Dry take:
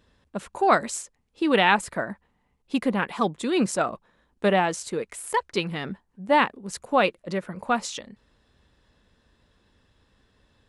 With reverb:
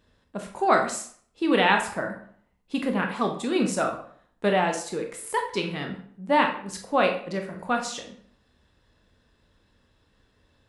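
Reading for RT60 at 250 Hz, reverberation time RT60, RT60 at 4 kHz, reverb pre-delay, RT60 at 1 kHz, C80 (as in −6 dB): 0.60 s, 0.55 s, 0.40 s, 19 ms, 0.55 s, 11.5 dB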